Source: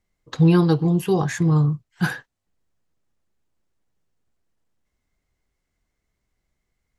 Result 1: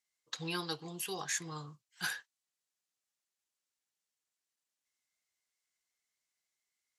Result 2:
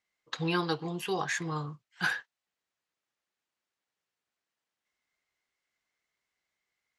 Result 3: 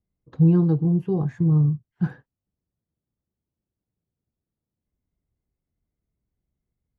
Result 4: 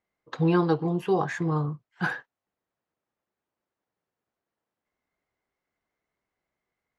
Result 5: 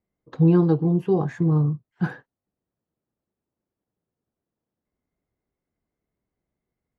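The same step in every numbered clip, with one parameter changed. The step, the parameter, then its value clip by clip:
resonant band-pass, frequency: 7,700, 2,700, 120, 890, 310 Hertz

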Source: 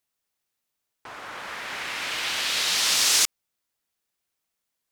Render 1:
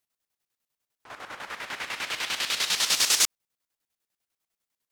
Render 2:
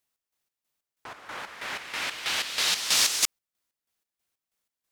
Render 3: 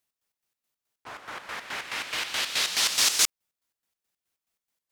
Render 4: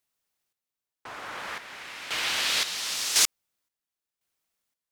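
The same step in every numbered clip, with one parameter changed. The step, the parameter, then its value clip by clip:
square-wave tremolo, speed: 10, 3.1, 4.7, 0.95 Hertz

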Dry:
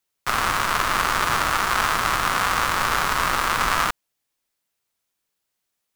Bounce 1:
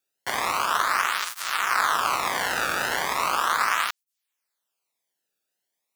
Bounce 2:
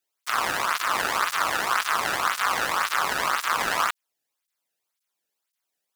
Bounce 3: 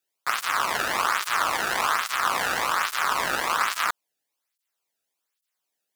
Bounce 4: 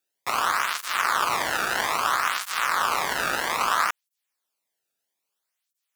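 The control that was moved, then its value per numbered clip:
through-zero flanger with one copy inverted, nulls at: 0.37, 1.9, 1.2, 0.61 Hertz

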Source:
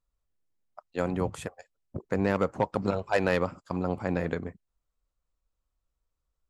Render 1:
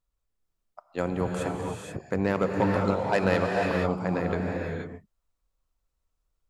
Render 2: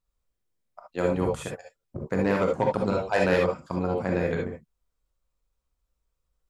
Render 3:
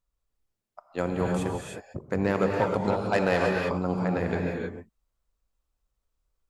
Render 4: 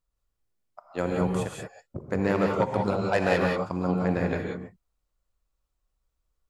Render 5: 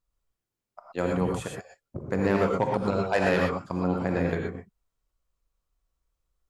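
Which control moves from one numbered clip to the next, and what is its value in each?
reverb whose tail is shaped and stops, gate: 510, 90, 340, 210, 140 milliseconds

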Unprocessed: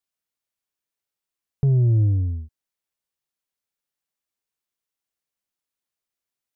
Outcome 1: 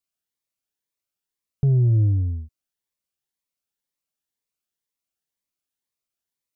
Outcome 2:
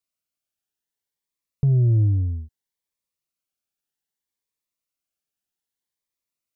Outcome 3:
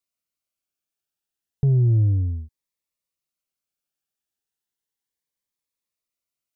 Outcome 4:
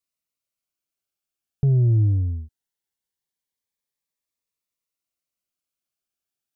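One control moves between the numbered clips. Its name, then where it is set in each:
phaser whose notches keep moving one way, speed: 2, 0.63, 0.33, 0.21 Hertz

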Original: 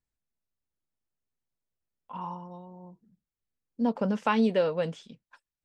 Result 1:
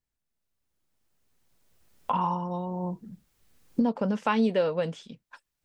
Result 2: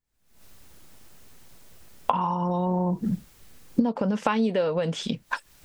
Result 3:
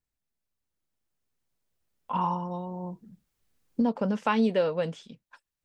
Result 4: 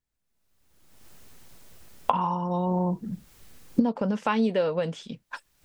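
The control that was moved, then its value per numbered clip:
camcorder AGC, rising by: 13, 87, 5, 35 dB per second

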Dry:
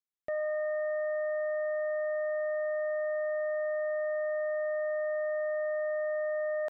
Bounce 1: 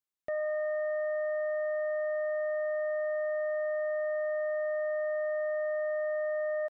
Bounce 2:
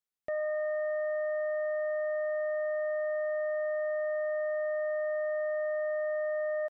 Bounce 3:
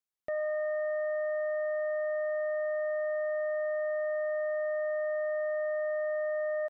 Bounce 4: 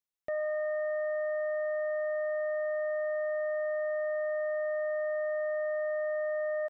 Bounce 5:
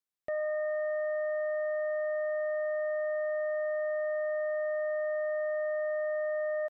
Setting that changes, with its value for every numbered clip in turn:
far-end echo of a speakerphone, delay time: 180, 270, 80, 120, 400 milliseconds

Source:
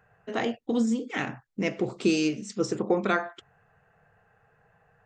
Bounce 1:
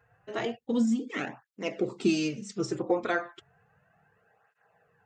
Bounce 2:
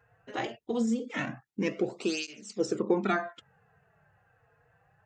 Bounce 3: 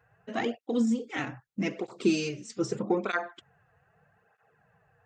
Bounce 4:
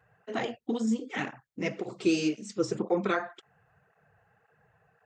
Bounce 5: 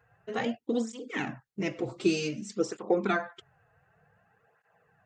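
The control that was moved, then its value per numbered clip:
through-zero flanger with one copy inverted, nulls at: 0.33, 0.22, 0.8, 1.9, 0.54 Hertz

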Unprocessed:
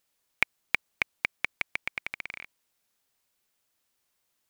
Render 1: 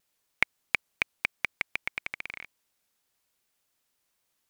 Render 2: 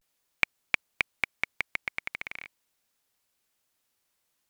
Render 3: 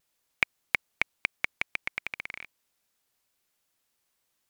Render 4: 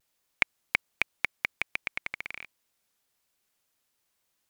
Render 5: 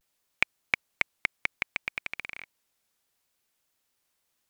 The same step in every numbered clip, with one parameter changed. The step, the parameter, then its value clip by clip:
pitch vibrato, speed: 4.1, 0.41, 2.5, 1.3, 0.63 Hertz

